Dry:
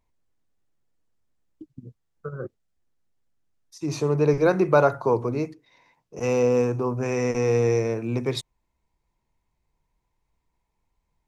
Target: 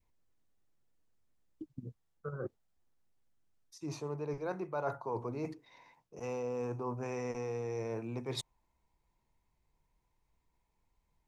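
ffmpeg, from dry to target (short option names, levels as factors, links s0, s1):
-af "areverse,acompressor=threshold=0.02:ratio=8,areverse,adynamicequalizer=threshold=0.00141:dfrequency=870:dqfactor=1.7:tfrequency=870:tqfactor=1.7:attack=5:release=100:ratio=0.375:range=3.5:mode=boostabove:tftype=bell,volume=0.75"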